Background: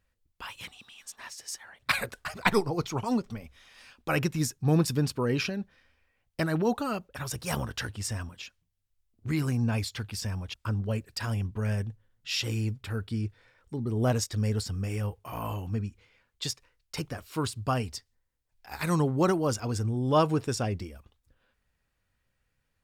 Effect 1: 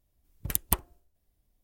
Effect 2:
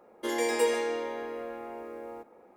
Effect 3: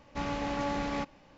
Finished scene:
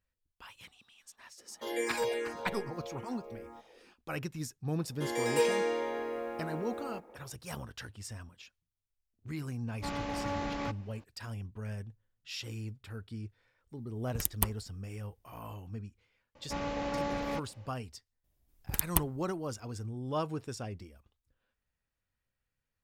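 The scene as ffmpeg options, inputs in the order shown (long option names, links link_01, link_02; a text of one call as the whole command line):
ffmpeg -i bed.wav -i cue0.wav -i cue1.wav -i cue2.wav -filter_complex "[2:a]asplit=2[link_01][link_02];[3:a]asplit=2[link_03][link_04];[1:a]asplit=2[link_05][link_06];[0:a]volume=-10.5dB[link_07];[link_01]asplit=2[link_08][link_09];[link_09]afreqshift=-2.5[link_10];[link_08][link_10]amix=inputs=2:normalize=1[link_11];[link_02]dynaudnorm=framelen=400:gausssize=3:maxgain=6.5dB[link_12];[link_04]equalizer=frequency=520:width=5.4:gain=7.5[link_13];[link_11]atrim=end=2.56,asetpts=PTS-STARTPTS,volume=-3dB,afade=type=in:duration=0.004:curve=hsin,afade=type=out:start_time=2.556:duration=0.004:curve=hsin,adelay=1380[link_14];[link_12]atrim=end=2.56,asetpts=PTS-STARTPTS,volume=-6dB,afade=type=in:duration=0.004:curve=hsin,afade=type=out:start_time=2.556:duration=0.004:curve=hsin,adelay=210357S[link_15];[link_03]atrim=end=1.37,asetpts=PTS-STARTPTS,volume=-3dB,afade=type=in:duration=0.004:curve=hsin,afade=type=out:start_time=1.366:duration=0.004:curve=hsin,adelay=9670[link_16];[link_05]atrim=end=1.63,asetpts=PTS-STARTPTS,volume=-4dB,afade=type=in:duration=0.004:curve=hsin,afade=type=out:start_time=1.626:duration=0.004:curve=hsin,adelay=13700[link_17];[link_13]atrim=end=1.37,asetpts=PTS-STARTPTS,volume=-3dB,afade=type=in:duration=0.004:curve=hsin,afade=type=out:start_time=1.366:duration=0.004:curve=hsin,adelay=16350[link_18];[link_06]atrim=end=1.63,asetpts=PTS-STARTPTS,volume=-2.5dB,afade=type=in:duration=0.004:curve=hsin,afade=type=out:start_time=1.626:duration=0.004:curve=hsin,adelay=18240[link_19];[link_07][link_14][link_15][link_16][link_17][link_18][link_19]amix=inputs=7:normalize=0" out.wav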